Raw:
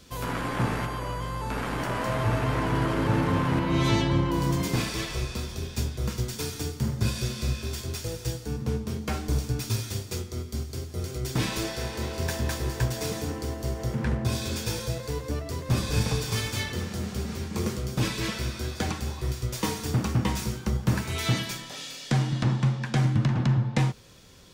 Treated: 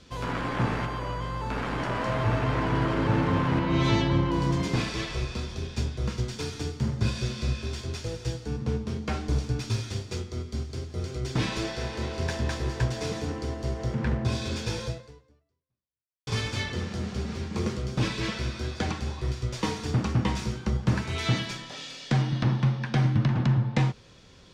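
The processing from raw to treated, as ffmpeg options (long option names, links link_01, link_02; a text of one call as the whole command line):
ffmpeg -i in.wav -filter_complex "[0:a]asettb=1/sr,asplit=3[link_01][link_02][link_03];[link_01]atrim=end=22.214[link_04];[link_02]atrim=start=22.21:end=23.31,asetpts=PTS-STARTPTS,afade=type=in:duration=0.004:curve=qsin,afade=type=out:start_time=1.096:duration=0.004:curve=qsin,bandreject=frequency=7300:width=5.2[link_05];[link_03]atrim=start=23.306[link_06];[link_04][link_05]acrossfade=duration=0.004:curve1=hsin:curve2=qsin[link_07];[link_07][link_06]acrossfade=duration=0.004:curve1=qsin:curve2=hsin,asplit=2[link_08][link_09];[link_08]atrim=end=16.27,asetpts=PTS-STARTPTS,afade=type=out:start_time=14.87:duration=1.4:curve=exp[link_10];[link_09]atrim=start=16.27,asetpts=PTS-STARTPTS,afade=type=in:duration=0.004:curve=hsin[link_11];[link_10][link_11]concat=n=2:v=0:a=1,lowpass=5400" out.wav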